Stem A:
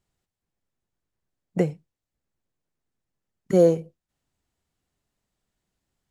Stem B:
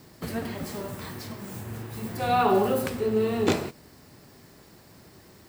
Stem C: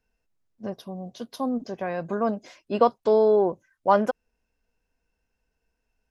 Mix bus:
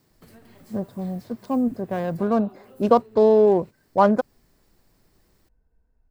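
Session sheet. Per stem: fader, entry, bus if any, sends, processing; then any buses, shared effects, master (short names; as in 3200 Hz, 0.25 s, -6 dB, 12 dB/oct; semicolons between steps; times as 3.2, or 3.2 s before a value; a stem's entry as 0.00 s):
off
-13.5 dB, 0.00 s, no send, compressor 8:1, threshold -33 dBFS, peak gain reduction 15.5 dB
+1.5 dB, 0.10 s, no send, Wiener smoothing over 15 samples; low shelf 190 Hz +12 dB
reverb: off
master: high shelf 7700 Hz +3.5 dB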